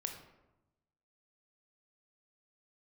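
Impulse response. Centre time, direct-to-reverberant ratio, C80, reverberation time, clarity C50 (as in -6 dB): 24 ms, 4.0 dB, 9.5 dB, 1.0 s, 7.0 dB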